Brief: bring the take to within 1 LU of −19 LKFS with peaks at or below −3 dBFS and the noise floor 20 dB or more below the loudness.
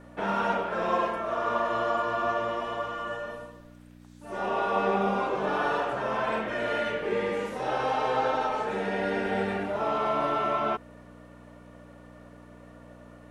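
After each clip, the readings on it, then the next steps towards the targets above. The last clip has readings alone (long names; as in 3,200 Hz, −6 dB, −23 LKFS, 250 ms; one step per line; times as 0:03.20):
mains hum 60 Hz; hum harmonics up to 300 Hz; level of the hum −49 dBFS; integrated loudness −28.5 LKFS; sample peak −13.0 dBFS; target loudness −19.0 LKFS
→ hum removal 60 Hz, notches 5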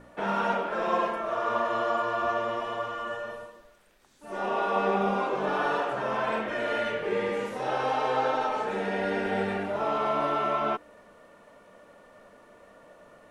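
mains hum none found; integrated loudness −28.5 LKFS; sample peak −13.0 dBFS; target loudness −19.0 LKFS
→ level +9.5 dB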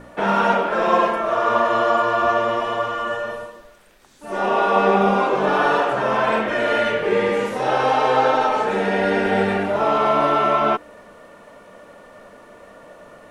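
integrated loudness −19.0 LKFS; sample peak −3.5 dBFS; background noise floor −46 dBFS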